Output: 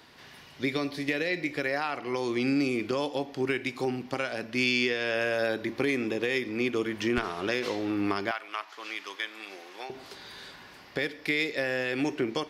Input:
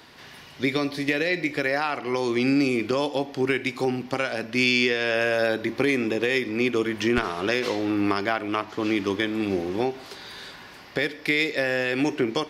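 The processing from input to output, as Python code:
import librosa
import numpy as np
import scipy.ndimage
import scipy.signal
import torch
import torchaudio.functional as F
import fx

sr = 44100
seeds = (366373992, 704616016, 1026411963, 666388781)

y = fx.highpass(x, sr, hz=1000.0, slope=12, at=(8.31, 9.9))
y = y * 10.0 ** (-5.0 / 20.0)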